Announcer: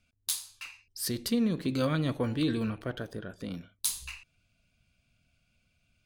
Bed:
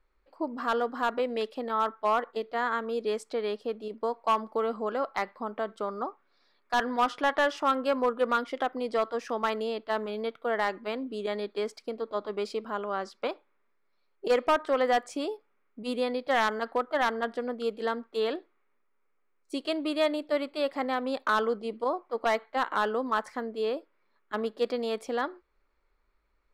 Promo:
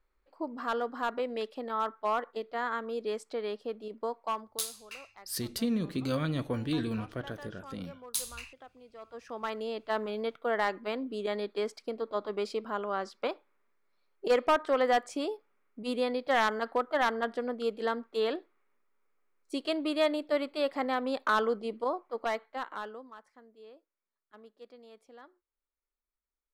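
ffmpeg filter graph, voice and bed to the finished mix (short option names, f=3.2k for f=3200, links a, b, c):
-filter_complex "[0:a]adelay=4300,volume=-2.5dB[a];[1:a]volume=17.5dB,afade=t=out:st=4.08:d=0.59:silence=0.11885,afade=t=in:st=8.98:d=1.03:silence=0.0841395,afade=t=out:st=21.63:d=1.51:silence=0.0841395[b];[a][b]amix=inputs=2:normalize=0"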